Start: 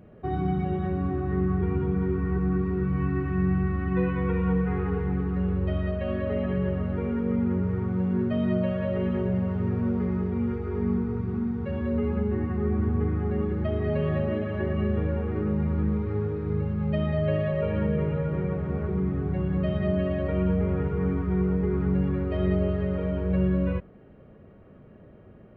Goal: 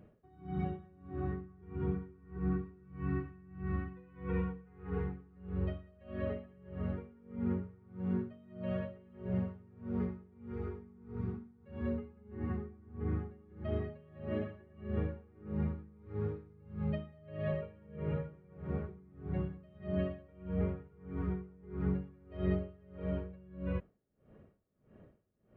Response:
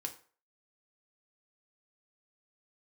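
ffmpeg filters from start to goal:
-af "aeval=exprs='val(0)*pow(10,-27*(0.5-0.5*cos(2*PI*1.6*n/s))/20)':c=same,volume=0.473"

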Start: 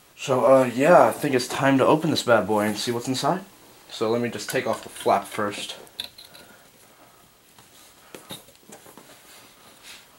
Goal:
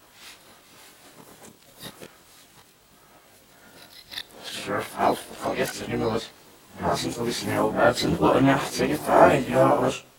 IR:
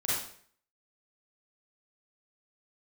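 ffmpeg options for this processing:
-filter_complex "[0:a]areverse,asplit=2[s0][s1];[1:a]atrim=start_sample=2205,lowshelf=f=340:g=8[s2];[s1][s2]afir=irnorm=-1:irlink=0,volume=0.0316[s3];[s0][s3]amix=inputs=2:normalize=0,asplit=3[s4][s5][s6];[s5]asetrate=22050,aresample=44100,atempo=2,volume=0.398[s7];[s6]asetrate=55563,aresample=44100,atempo=0.793701,volume=0.501[s8];[s4][s7][s8]amix=inputs=3:normalize=0,flanger=delay=19.5:depth=6.4:speed=0.33"

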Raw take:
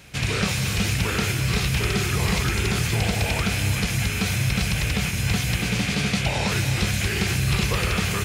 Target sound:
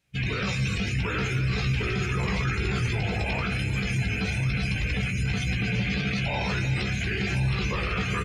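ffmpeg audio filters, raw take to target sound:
-filter_complex "[0:a]afftdn=nr=27:nf=-29,bandreject=f=56.49:t=h:w=4,bandreject=f=112.98:t=h:w=4,bandreject=f=169.47:t=h:w=4,bandreject=f=225.96:t=h:w=4,bandreject=f=282.45:t=h:w=4,bandreject=f=338.94:t=h:w=4,bandreject=f=395.43:t=h:w=4,bandreject=f=451.92:t=h:w=4,bandreject=f=508.41:t=h:w=4,bandreject=f=564.9:t=h:w=4,bandreject=f=621.39:t=h:w=4,bandreject=f=677.88:t=h:w=4,bandreject=f=734.37:t=h:w=4,bandreject=f=790.86:t=h:w=4,bandreject=f=847.35:t=h:w=4,bandreject=f=903.84:t=h:w=4,bandreject=f=960.33:t=h:w=4,bandreject=f=1016.82:t=h:w=4,bandreject=f=1073.31:t=h:w=4,bandreject=f=1129.8:t=h:w=4,bandreject=f=1186.29:t=h:w=4,bandreject=f=1242.78:t=h:w=4,bandreject=f=1299.27:t=h:w=4,bandreject=f=1355.76:t=h:w=4,bandreject=f=1412.25:t=h:w=4,bandreject=f=1468.74:t=h:w=4,bandreject=f=1525.23:t=h:w=4,bandreject=f=1581.72:t=h:w=4,adynamicequalizer=threshold=0.00794:dfrequency=1200:dqfactor=1.1:tfrequency=1200:tqfactor=1.1:attack=5:release=100:ratio=0.375:range=1.5:mode=boostabove:tftype=bell,alimiter=limit=0.0891:level=0:latency=1:release=12,asplit=2[s0][s1];[s1]adelay=16,volume=0.531[s2];[s0][s2]amix=inputs=2:normalize=0,aecho=1:1:1043:0.251"

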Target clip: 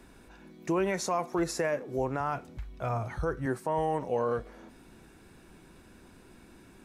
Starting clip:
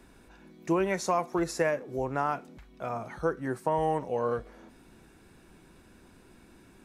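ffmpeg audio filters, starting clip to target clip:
-filter_complex "[0:a]alimiter=limit=0.0891:level=0:latency=1:release=50,asettb=1/sr,asplit=3[s0][s1][s2];[s0]atrim=end=2.204[s3];[s1]atrim=start=2.2:end=3.46,asetpts=PTS-STARTPTS,afade=t=in:d=0.004:c=qsin,afade=t=out:st=1.256:d=0.004:c=qsin,lowshelf=f=140:t=q:w=1.5:g=10.5[s4];[s2]atrim=start=3.456[s5];[s3][s4]acrossfade=d=0.004:c1=hsin:c2=qsin[s6];[s6][s5]acrossfade=d=0.004:c1=qsin:c2=hsin,volume=1.19"

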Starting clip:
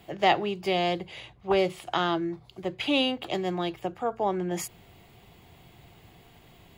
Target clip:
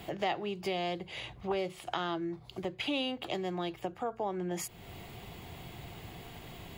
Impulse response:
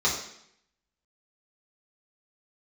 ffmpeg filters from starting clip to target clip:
-af "acompressor=threshold=0.00501:ratio=2.5,volume=2.24"

